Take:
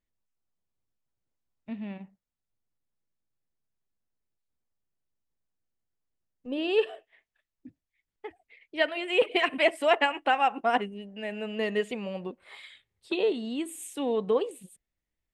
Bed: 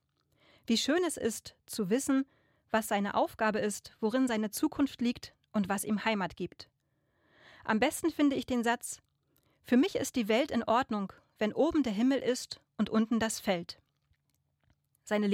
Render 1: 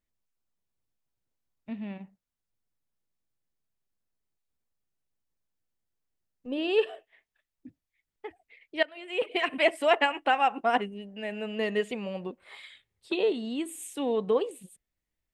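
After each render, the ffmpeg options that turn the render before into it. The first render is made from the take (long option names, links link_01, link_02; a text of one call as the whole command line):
ffmpeg -i in.wav -filter_complex "[0:a]asplit=2[link_01][link_02];[link_01]atrim=end=8.83,asetpts=PTS-STARTPTS,afade=type=out:start_time=8.826:duration=0.004:curve=hsin:silence=0.125893[link_03];[link_02]atrim=start=8.83,asetpts=PTS-STARTPTS,afade=type=in:duration=0.84:silence=0.125893[link_04];[link_03][link_04]concat=n=2:v=0:a=1" out.wav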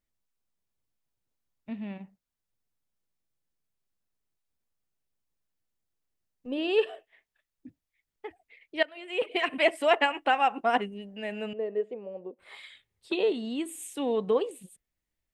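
ffmpeg -i in.wav -filter_complex "[0:a]asettb=1/sr,asplit=3[link_01][link_02][link_03];[link_01]atrim=end=11.534[link_04];[link_02]atrim=start=11.53:end=12.39,asetpts=PTS-STARTPTS,afade=type=in:duration=0.004:curve=qsin,afade=type=out:start_time=0.856:duration=0.004:curve=qsin,bandpass=frequency=460:width_type=q:width=2.2[link_05];[link_03]atrim=start=12.386[link_06];[link_04][link_05]acrossfade=duration=0.004:curve1=hsin:curve2=qsin[link_07];[link_07][link_06]acrossfade=duration=0.004:curve1=qsin:curve2=hsin" out.wav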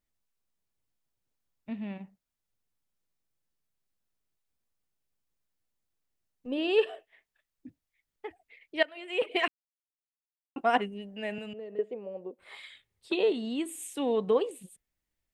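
ffmpeg -i in.wav -filter_complex "[0:a]asettb=1/sr,asplit=3[link_01][link_02][link_03];[link_01]atrim=end=11.384[link_04];[link_02]atrim=start=11.38:end=11.79,asetpts=PTS-STARTPTS,afade=type=in:duration=0.004:curve=qsin,afade=type=out:start_time=0.406:duration=0.004:curve=qsin,acrossover=split=180|3000[link_05][link_06][link_07];[link_06]acompressor=threshold=-41dB:ratio=4:attack=3.2:release=140:knee=2.83:detection=peak[link_08];[link_05][link_08][link_07]amix=inputs=3:normalize=0[link_09];[link_03]atrim=start=11.786[link_10];[link_04][link_09]acrossfade=duration=0.004:curve1=hsin:curve2=qsin[link_11];[link_11][link_10]acrossfade=duration=0.004:curve1=qsin:curve2=hsin,asplit=3[link_12][link_13][link_14];[link_12]atrim=end=9.48,asetpts=PTS-STARTPTS,afade=type=out:start_time=9.476:duration=0.004:curve=hsin[link_15];[link_13]atrim=start=9.48:end=10.56,asetpts=PTS-STARTPTS,volume=0[link_16];[link_14]atrim=start=10.56,asetpts=PTS-STARTPTS,afade=type=in:duration=0.004:curve=hsin[link_17];[link_15][link_16][link_17]concat=n=3:v=0:a=1" out.wav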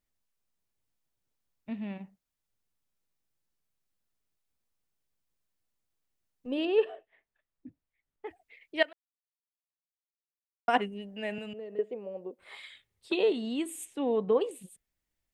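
ffmpeg -i in.wav -filter_complex "[0:a]asettb=1/sr,asplit=3[link_01][link_02][link_03];[link_01]atrim=end=6.654[link_04];[link_02]atrim=start=6.65:end=8.27,asetpts=PTS-STARTPTS,afade=type=in:duration=0.004:curve=qsin,afade=type=out:start_time=1.616:duration=0.004:curve=qsin,lowpass=frequency=1300:poles=1[link_05];[link_03]atrim=start=8.266[link_06];[link_04][link_05]acrossfade=duration=0.004:curve1=hsin:curve2=qsin[link_07];[link_07][link_06]acrossfade=duration=0.004:curve1=qsin:curve2=hsin,asplit=3[link_08][link_09][link_10];[link_08]afade=type=out:start_time=13.84:duration=0.02[link_11];[link_09]lowpass=frequency=1500:poles=1,afade=type=in:start_time=13.84:duration=0.02,afade=type=out:start_time=14.4:duration=0.02[link_12];[link_10]afade=type=in:start_time=14.4:duration=0.02[link_13];[link_11][link_12][link_13]amix=inputs=3:normalize=0,asplit=3[link_14][link_15][link_16];[link_14]atrim=end=8.93,asetpts=PTS-STARTPTS,afade=type=out:start_time=8.926:duration=0.004:curve=hsin[link_17];[link_15]atrim=start=8.93:end=10.68,asetpts=PTS-STARTPTS,volume=0[link_18];[link_16]atrim=start=10.68,asetpts=PTS-STARTPTS,afade=type=in:duration=0.004:curve=hsin[link_19];[link_17][link_18][link_19]concat=n=3:v=0:a=1" out.wav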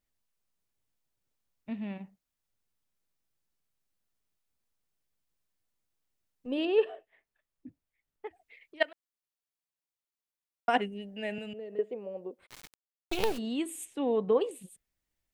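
ffmpeg -i in.wav -filter_complex "[0:a]asplit=3[link_01][link_02][link_03];[link_01]afade=type=out:start_time=8.27:duration=0.02[link_04];[link_02]acompressor=threshold=-48dB:ratio=16:attack=3.2:release=140:knee=1:detection=peak,afade=type=in:start_time=8.27:duration=0.02,afade=type=out:start_time=8.8:duration=0.02[link_05];[link_03]afade=type=in:start_time=8.8:duration=0.02[link_06];[link_04][link_05][link_06]amix=inputs=3:normalize=0,asettb=1/sr,asplit=3[link_07][link_08][link_09];[link_07]atrim=end=10.734[link_10];[link_08]atrim=start=10.73:end=11.73,asetpts=PTS-STARTPTS,afade=type=in:duration=0.004:curve=qsin,afade=type=out:start_time=0.996:duration=0.004:curve=qsin,equalizer=frequency=1100:width=3.6:gain=-8.5[link_11];[link_09]atrim=start=11.726[link_12];[link_10][link_11]acrossfade=duration=0.004:curve1=hsin:curve2=qsin[link_13];[link_13][link_12]acrossfade=duration=0.004:curve1=qsin:curve2=hsin,asplit=3[link_14][link_15][link_16];[link_14]afade=type=out:start_time=12.45:duration=0.02[link_17];[link_15]acrusher=bits=4:dc=4:mix=0:aa=0.000001,afade=type=in:start_time=12.45:duration=0.02,afade=type=out:start_time=13.37:duration=0.02[link_18];[link_16]afade=type=in:start_time=13.37:duration=0.02[link_19];[link_17][link_18][link_19]amix=inputs=3:normalize=0" out.wav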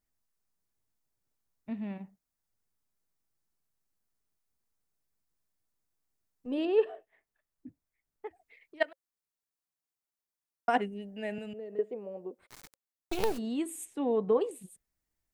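ffmpeg -i in.wav -af "equalizer=frequency=3000:width_type=o:width=0.98:gain=-6.5,bandreject=frequency=540:width=13" out.wav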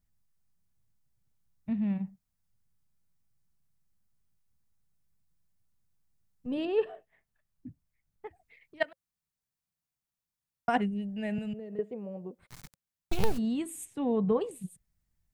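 ffmpeg -i in.wav -af "lowshelf=frequency=230:width_type=q:width=1.5:gain=10.5" out.wav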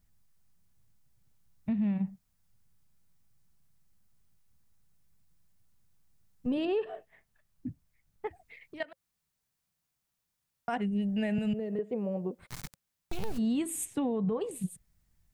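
ffmpeg -i in.wav -filter_complex "[0:a]asplit=2[link_01][link_02];[link_02]acompressor=threshold=-34dB:ratio=6,volume=2dB[link_03];[link_01][link_03]amix=inputs=2:normalize=0,alimiter=limit=-23.5dB:level=0:latency=1:release=149" out.wav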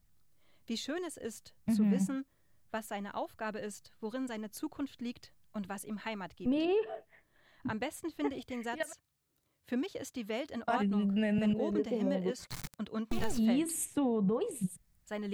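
ffmpeg -i in.wav -i bed.wav -filter_complex "[1:a]volume=-9dB[link_01];[0:a][link_01]amix=inputs=2:normalize=0" out.wav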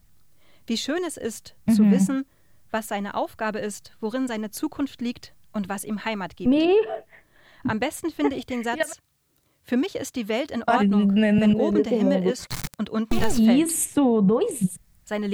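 ffmpeg -i in.wav -af "volume=11.5dB" out.wav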